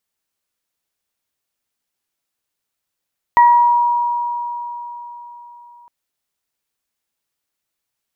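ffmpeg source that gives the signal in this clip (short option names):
-f lavfi -i "aevalsrc='0.531*pow(10,-3*t/4.08)*sin(2*PI*957*t)+0.15*pow(10,-3*t/0.56)*sin(2*PI*1914*t)':d=2.51:s=44100"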